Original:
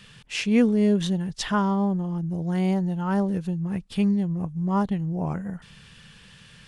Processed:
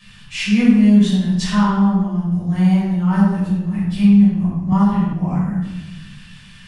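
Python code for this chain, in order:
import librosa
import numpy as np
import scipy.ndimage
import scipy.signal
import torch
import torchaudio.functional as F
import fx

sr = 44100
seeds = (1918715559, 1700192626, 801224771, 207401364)

y = fx.peak_eq(x, sr, hz=470.0, db=-12.5, octaves=1.0)
y = fx.room_shoebox(y, sr, seeds[0], volume_m3=490.0, walls='mixed', distance_m=5.8)
y = fx.band_squash(y, sr, depth_pct=70, at=(4.72, 5.13))
y = y * 10.0 ** (-5.5 / 20.0)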